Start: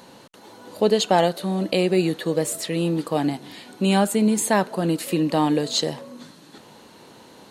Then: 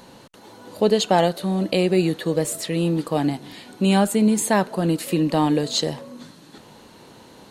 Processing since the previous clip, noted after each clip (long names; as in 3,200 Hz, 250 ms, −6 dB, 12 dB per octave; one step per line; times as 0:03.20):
low-shelf EQ 86 Hz +11.5 dB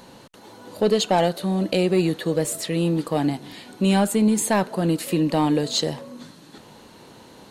soft clipping −8.5 dBFS, distortion −21 dB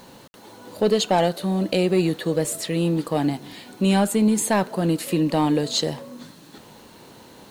bit reduction 9 bits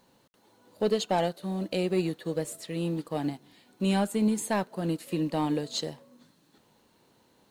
expander for the loud parts 1.5 to 1, over −39 dBFS
level −6 dB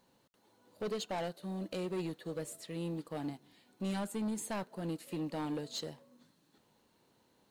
soft clipping −25 dBFS, distortion −12 dB
level −6.5 dB